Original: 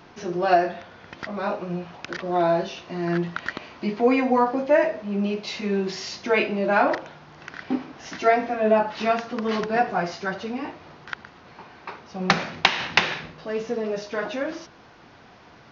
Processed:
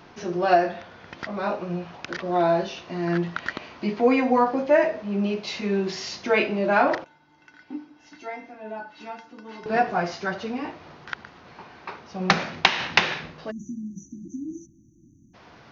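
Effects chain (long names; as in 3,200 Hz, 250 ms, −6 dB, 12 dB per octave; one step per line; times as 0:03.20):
0:07.04–0:09.66: tuned comb filter 300 Hz, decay 0.18 s, harmonics odd, mix 90%
0:13.51–0:15.34: time-frequency box erased 350–5,800 Hz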